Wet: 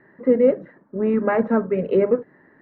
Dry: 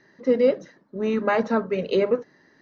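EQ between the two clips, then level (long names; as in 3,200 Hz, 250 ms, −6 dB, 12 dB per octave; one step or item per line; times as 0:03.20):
low-pass filter 1,900 Hz 24 dB per octave
dynamic equaliser 1,100 Hz, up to −6 dB, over −34 dBFS, Q 0.71
+5.0 dB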